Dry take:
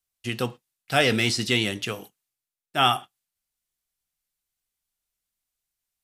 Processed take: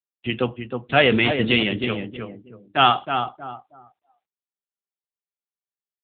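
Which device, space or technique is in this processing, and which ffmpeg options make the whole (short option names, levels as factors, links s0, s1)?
mobile call with aggressive noise cancelling: -filter_complex "[0:a]highpass=110,asplit=2[s0][s1];[s1]adelay=316,lowpass=f=1900:p=1,volume=0.501,asplit=2[s2][s3];[s3]adelay=316,lowpass=f=1900:p=1,volume=0.32,asplit=2[s4][s5];[s5]adelay=316,lowpass=f=1900:p=1,volume=0.32,asplit=2[s6][s7];[s7]adelay=316,lowpass=f=1900:p=1,volume=0.32[s8];[s0][s2][s4][s6][s8]amix=inputs=5:normalize=0,afftdn=nr=32:nf=-47,volume=1.88" -ar 8000 -c:a libopencore_amrnb -b:a 7950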